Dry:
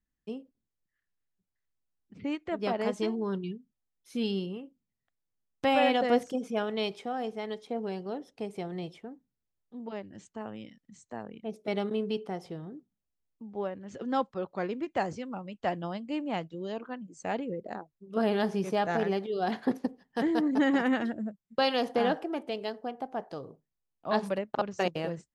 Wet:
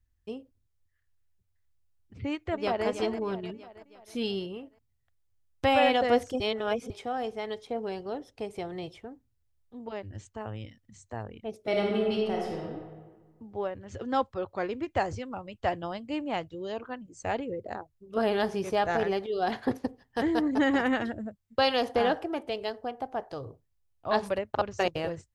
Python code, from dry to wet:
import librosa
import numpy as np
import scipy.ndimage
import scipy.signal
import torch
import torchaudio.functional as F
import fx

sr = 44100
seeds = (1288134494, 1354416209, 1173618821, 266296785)

y = fx.echo_throw(x, sr, start_s=2.25, length_s=0.61, ms=320, feedback_pct=55, wet_db=-10.0)
y = fx.reverb_throw(y, sr, start_s=11.64, length_s=1.02, rt60_s=1.5, drr_db=-1.5)
y = fx.edit(y, sr, fx.reverse_span(start_s=6.4, length_s=0.5), tone=tone)
y = fx.low_shelf_res(y, sr, hz=130.0, db=10.5, q=3.0)
y = y * 10.0 ** (2.5 / 20.0)